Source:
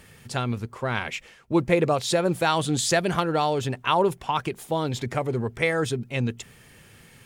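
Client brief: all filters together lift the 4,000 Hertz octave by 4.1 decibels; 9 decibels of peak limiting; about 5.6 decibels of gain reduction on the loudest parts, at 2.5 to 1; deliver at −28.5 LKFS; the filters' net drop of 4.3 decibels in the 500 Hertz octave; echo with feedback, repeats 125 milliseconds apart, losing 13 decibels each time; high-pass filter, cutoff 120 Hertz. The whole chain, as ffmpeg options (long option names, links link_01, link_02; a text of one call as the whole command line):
ffmpeg -i in.wav -af "highpass=120,equalizer=frequency=500:width_type=o:gain=-5.5,equalizer=frequency=4000:width_type=o:gain=5,acompressor=threshold=-26dB:ratio=2.5,alimiter=limit=-19.5dB:level=0:latency=1,aecho=1:1:125|250|375:0.224|0.0493|0.0108,volume=3dB" out.wav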